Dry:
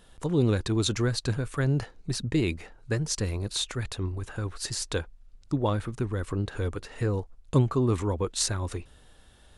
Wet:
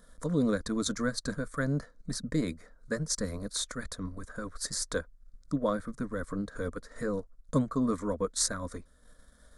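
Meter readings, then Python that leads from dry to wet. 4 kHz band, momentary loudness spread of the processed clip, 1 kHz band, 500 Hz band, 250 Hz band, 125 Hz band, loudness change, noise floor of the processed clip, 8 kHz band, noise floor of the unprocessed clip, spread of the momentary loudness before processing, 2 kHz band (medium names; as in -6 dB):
-5.0 dB, 10 LU, -2.5 dB, -3.0 dB, -2.0 dB, -10.0 dB, -4.0 dB, -60 dBFS, -1.0 dB, -55 dBFS, 9 LU, -1.5 dB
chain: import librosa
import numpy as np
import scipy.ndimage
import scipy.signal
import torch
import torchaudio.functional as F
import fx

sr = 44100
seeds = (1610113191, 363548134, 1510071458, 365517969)

y = fx.transient(x, sr, attack_db=-1, sustain_db=-7)
y = fx.fixed_phaser(y, sr, hz=550.0, stages=8)
y = y * librosa.db_to_amplitude(1.5)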